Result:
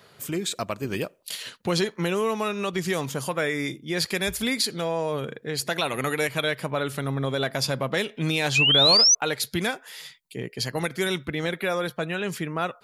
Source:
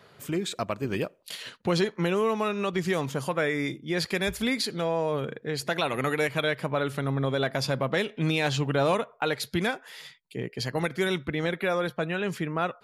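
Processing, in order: painted sound rise, 8.55–9.15, 2400–6200 Hz -22 dBFS; high shelf 4500 Hz +9.5 dB

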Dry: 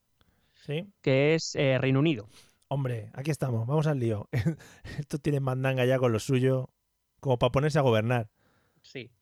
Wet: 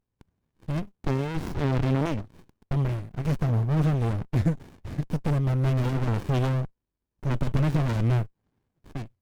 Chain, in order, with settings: sample leveller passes 2; running maximum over 65 samples; gain -1 dB

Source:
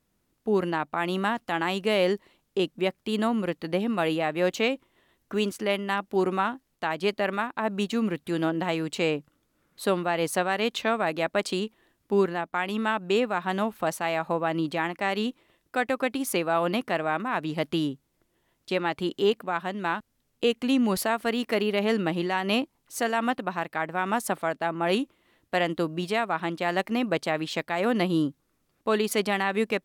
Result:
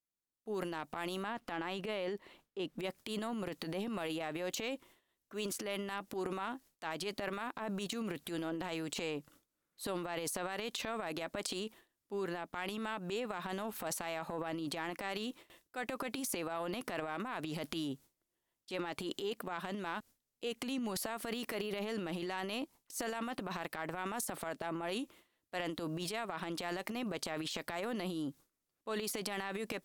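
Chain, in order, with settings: gate with hold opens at -51 dBFS; tone controls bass -5 dB, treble +10 dB, from 1.22 s treble -4 dB, from 2.78 s treble +7 dB; transient shaper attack -10 dB, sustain +10 dB; compressor, threshold -30 dBFS, peak gain reduction 10 dB; gain -5.5 dB

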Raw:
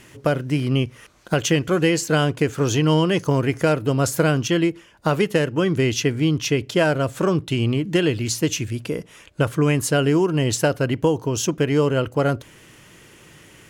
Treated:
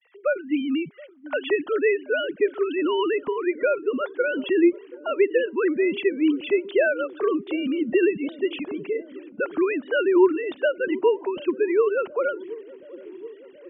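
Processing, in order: sine-wave speech; expander -51 dBFS; dark delay 0.727 s, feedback 69%, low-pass 470 Hz, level -16 dB; gain -3 dB

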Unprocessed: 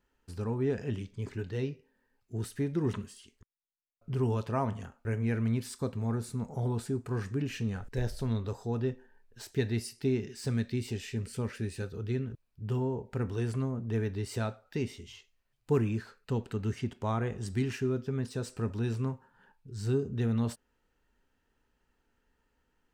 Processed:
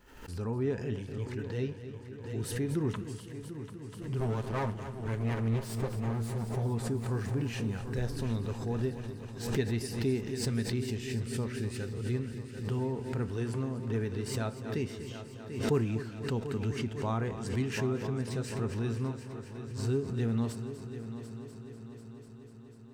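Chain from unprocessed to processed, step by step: 4.2–6.56 minimum comb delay 9.6 ms; multi-head echo 0.247 s, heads first and third, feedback 69%, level -12.5 dB; backwards sustainer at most 72 dB/s; gain -1.5 dB

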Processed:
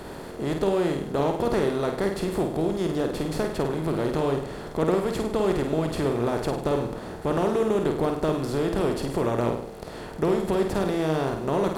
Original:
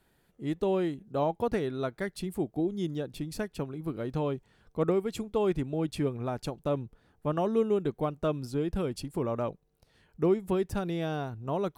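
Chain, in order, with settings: per-bin compression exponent 0.4; on a send: flutter echo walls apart 8.7 m, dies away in 0.56 s; on the sum: gain -1.5 dB

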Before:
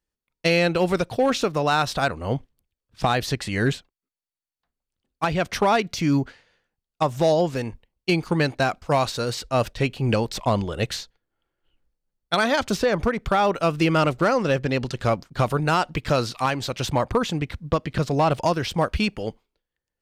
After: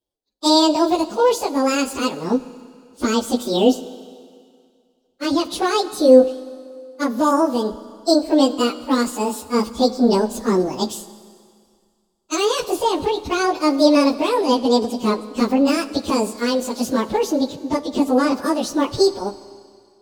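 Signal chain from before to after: pitch shift by moving bins +10.5 st; ten-band EQ 125 Hz -8 dB, 250 Hz +8 dB, 500 Hz +9 dB, 2000 Hz -11 dB, 4000 Hz +9 dB; Schroeder reverb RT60 2.1 s, combs from 29 ms, DRR 14.5 dB; gain +2 dB

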